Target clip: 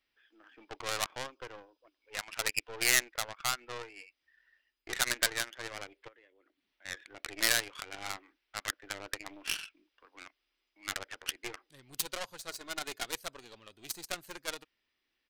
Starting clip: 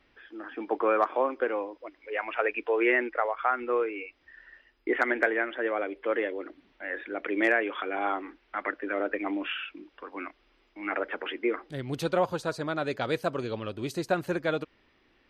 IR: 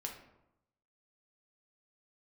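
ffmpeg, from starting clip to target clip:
-filter_complex "[0:a]asettb=1/sr,asplit=3[a][b][c];[a]atrim=end=1.234[d];[b]atrim=start=1.23:end=2.1,asetpts=PTS-STARTPTS,afade=t=in:d=0.004:c=qsin,afade=t=out:st=0.866:d=0.004:c=qsin,equalizer=f=2k:w=3.9:g=-13.5[e];[c]atrim=start=2.096[f];[d][e]acrossfade=d=0.004:c1=hsin:c2=qsin[g];[g][f]acrossfade=d=0.004:c1=qsin:c2=hsin,asettb=1/sr,asplit=3[h][i][j];[h]atrim=end=6.084[k];[i]atrim=start=6.08:end=6.85,asetpts=PTS-STARTPTS,afade=t=in:d=0.004:c=qsin,afade=t=out:st=0.766:d=0.004:c=qsin,acompressor=threshold=-45dB:ratio=3[l];[j]atrim=start=6.846[m];[k][l]acrossfade=d=0.004:c1=hsin:c2=qsin[n];[n][m]acrossfade=d=0.004:c1=qsin:c2=hsin,asplit=3[o][p][q];[o]afade=t=out:st=12.49:d=0.02[r];[p]aecho=1:1:2.8:0.85,afade=t=in:st=12.49:d=0.02,afade=t=out:st=13.06:d=0.02[s];[q]afade=t=in:st=13.06:d=0.02[t];[r][s][t]amix=inputs=3:normalize=0,aeval=exprs='(tanh(20*val(0)+0.6)-tanh(0.6))/20':c=same,crystalizer=i=8.5:c=0,aeval=exprs='0.501*(cos(1*acos(clip(val(0)/0.501,-1,1)))-cos(1*PI/2))+0.0355*(cos(3*acos(clip(val(0)/0.501,-1,1)))-cos(3*PI/2))+0.00562*(cos(6*acos(clip(val(0)/0.501,-1,1)))-cos(6*PI/2))+0.0501*(cos(7*acos(clip(val(0)/0.501,-1,1)))-cos(7*PI/2))':c=same"

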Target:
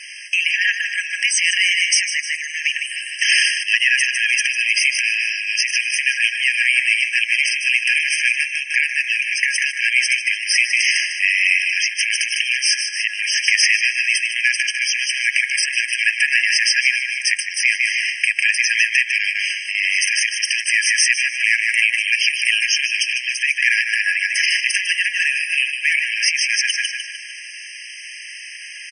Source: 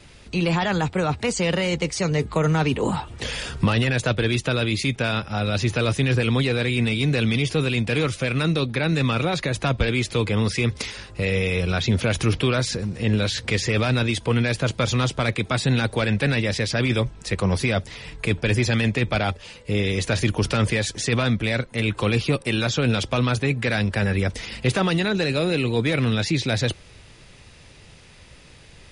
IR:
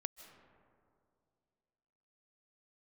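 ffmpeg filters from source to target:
-filter_complex "[0:a]aecho=1:1:151|302|453|604|755:0.376|0.162|0.0695|0.0299|0.0128,asplit=2[a][b];[1:a]atrim=start_sample=2205[c];[b][c]afir=irnorm=-1:irlink=0,volume=3.5dB[d];[a][d]amix=inputs=2:normalize=0,alimiter=level_in=13dB:limit=-1dB:release=50:level=0:latency=1,afftfilt=real='re*eq(mod(floor(b*sr/1024/1600),2),1)':imag='im*eq(mod(floor(b*sr/1024/1600),2),1)':win_size=1024:overlap=0.75"

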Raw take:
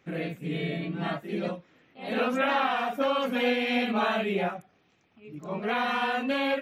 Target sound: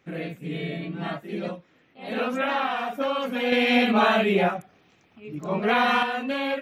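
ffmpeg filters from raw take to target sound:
-filter_complex "[0:a]asettb=1/sr,asplit=3[a][b][c];[a]atrim=end=3.524[d];[b]atrim=start=3.52:end=6.03,asetpts=PTS-STARTPTS,afade=t=in:d=0.004:c=qsin,afade=t=out:st=2.506:d=0.004:c=qsin,acontrast=75[e];[c]atrim=start=6.026[f];[d][e]acrossfade=d=0.004:c1=hsin:c2=qsin[g];[g][f]acrossfade=d=0.004:c1=qsin:c2=hsin"

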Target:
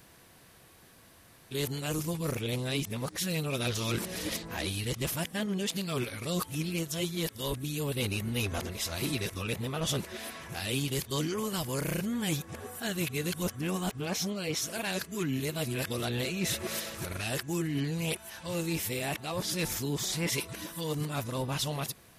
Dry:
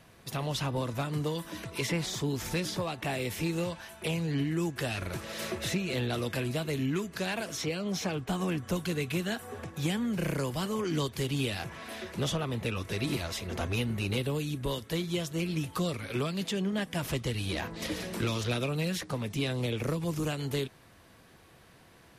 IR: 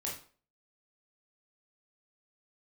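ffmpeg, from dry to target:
-af "areverse,crystalizer=i=1.5:c=0,volume=-1.5dB"

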